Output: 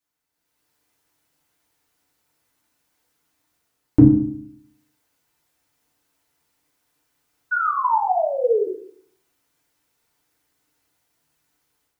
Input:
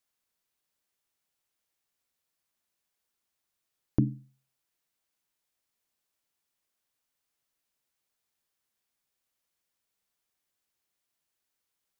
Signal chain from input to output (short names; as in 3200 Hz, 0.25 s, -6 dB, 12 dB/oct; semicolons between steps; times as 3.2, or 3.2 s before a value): painted sound fall, 7.51–8.67, 370–1500 Hz -36 dBFS; AGC gain up to 12 dB; FDN reverb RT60 0.59 s, low-frequency decay 1.35×, high-frequency decay 0.35×, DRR -5 dB; gain -3.5 dB